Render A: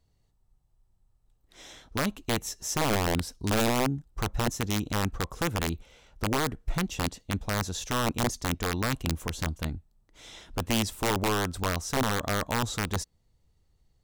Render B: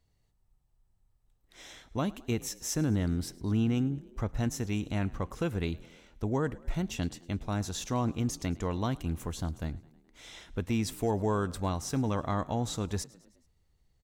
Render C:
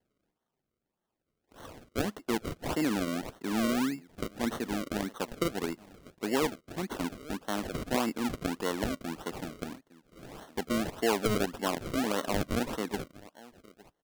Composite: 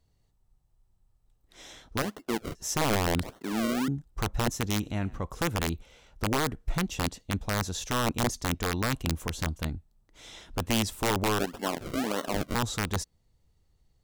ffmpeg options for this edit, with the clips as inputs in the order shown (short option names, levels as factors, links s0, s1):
-filter_complex "[2:a]asplit=3[s0][s1][s2];[0:a]asplit=5[s3][s4][s5][s6][s7];[s3]atrim=end=2.022[s8];[s0]atrim=start=2.018:end=2.552[s9];[s4]atrim=start=2.548:end=3.232[s10];[s1]atrim=start=3.228:end=3.882[s11];[s5]atrim=start=3.878:end=4.822[s12];[1:a]atrim=start=4.818:end=5.242[s13];[s6]atrim=start=5.238:end=11.392[s14];[s2]atrim=start=11.388:end=12.552[s15];[s7]atrim=start=12.548[s16];[s8][s9]acrossfade=d=0.004:c1=hsin:c2=hsin[s17];[s17][s10]acrossfade=d=0.004:c1=hsin:c2=hsin[s18];[s18][s11]acrossfade=d=0.004:c1=hsin:c2=hsin[s19];[s19][s12]acrossfade=d=0.004:c1=hsin:c2=hsin[s20];[s20][s13]acrossfade=d=0.004:c1=hsin:c2=hsin[s21];[s21][s14]acrossfade=d=0.004:c1=hsin:c2=hsin[s22];[s22][s15]acrossfade=d=0.004:c1=hsin:c2=hsin[s23];[s23][s16]acrossfade=d=0.004:c1=hsin:c2=hsin"